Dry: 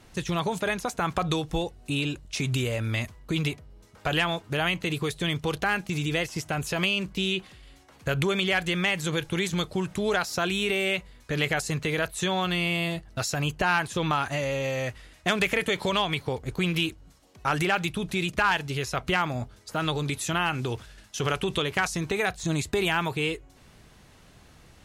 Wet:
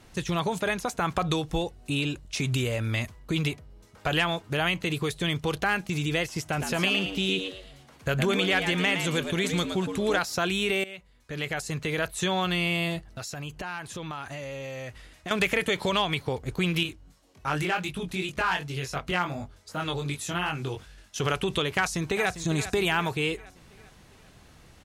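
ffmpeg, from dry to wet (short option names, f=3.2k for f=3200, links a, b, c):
-filter_complex "[0:a]asplit=3[a][b][c];[a]afade=t=out:st=6.52:d=0.02[d];[b]asplit=5[e][f][g][h][i];[f]adelay=114,afreqshift=92,volume=-7dB[j];[g]adelay=228,afreqshift=184,volume=-17.2dB[k];[h]adelay=342,afreqshift=276,volume=-27.3dB[l];[i]adelay=456,afreqshift=368,volume=-37.5dB[m];[e][j][k][l][m]amix=inputs=5:normalize=0,afade=t=in:st=6.52:d=0.02,afade=t=out:st=10.18:d=0.02[n];[c]afade=t=in:st=10.18:d=0.02[o];[d][n][o]amix=inputs=3:normalize=0,asettb=1/sr,asplit=3[p][q][r];[p]atrim=end=13.064[s];[q]atrim=start=13.06:end=15.31,asetpts=PTS-STARTPTS,afade=t=in:d=0.004:c=qsin,afade=t=out:st=2.246:d=0.004:c=qsin,acompressor=threshold=-37dB:ratio=2.5:attack=3.2:release=140:knee=1:detection=peak[t];[r]atrim=start=15.306[u];[s][t]acrossfade=d=0.004:c1=hsin:c2=qsin[v];[v][u]acrossfade=d=0.004:c1=qsin:c2=hsin,asettb=1/sr,asplit=3[w][x][y];[w]atrim=end=16.834[z];[x]atrim=start=16.83:end=21.16,asetpts=PTS-STARTPTS,afade=t=in:d=0.004:c=qsin,afade=t=out:st=4.326:d=0.004:c=qsin,flanger=delay=20:depth=2.8:speed=2.7[aa];[y]atrim=start=21.156[ab];[z][aa]acrossfade=d=0.004:c1=hsin:c2=qsin[ac];[ac][ab]acrossfade=d=0.004:c1=qsin:c2=hsin,asplit=2[ad][ae];[ae]afade=t=in:st=21.75:d=0.01,afade=t=out:st=22.36:d=0.01,aecho=0:1:400|800|1200|1600|2000:0.251189|0.125594|0.0627972|0.0313986|0.0156993[af];[ad][af]amix=inputs=2:normalize=0,asplit=2[ag][ah];[ag]atrim=end=10.84,asetpts=PTS-STARTPTS,afade=t=out:st=10.836:d=0.004:c=hsin:silence=0.125893[ai];[ah]atrim=start=10.84,asetpts=PTS-STARTPTS,afade=t=in:d=1.34:silence=0.125893[aj];[ai][aj]concat=n=2:v=0:a=1"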